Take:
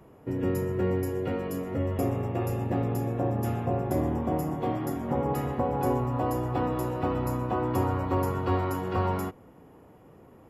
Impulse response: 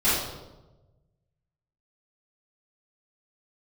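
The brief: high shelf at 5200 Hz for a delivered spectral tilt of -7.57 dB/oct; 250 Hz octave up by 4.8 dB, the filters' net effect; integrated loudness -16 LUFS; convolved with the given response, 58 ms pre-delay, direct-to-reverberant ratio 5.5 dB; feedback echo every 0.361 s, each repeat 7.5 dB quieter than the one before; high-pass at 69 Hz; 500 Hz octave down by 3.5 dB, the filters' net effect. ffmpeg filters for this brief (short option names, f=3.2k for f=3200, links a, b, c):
-filter_complex "[0:a]highpass=69,equalizer=f=250:t=o:g=8.5,equalizer=f=500:t=o:g=-8.5,highshelf=f=5.2k:g=7,aecho=1:1:361|722|1083|1444|1805:0.422|0.177|0.0744|0.0312|0.0131,asplit=2[a][b];[1:a]atrim=start_sample=2205,adelay=58[c];[b][c]afir=irnorm=-1:irlink=0,volume=-21dB[d];[a][d]amix=inputs=2:normalize=0,volume=9dB"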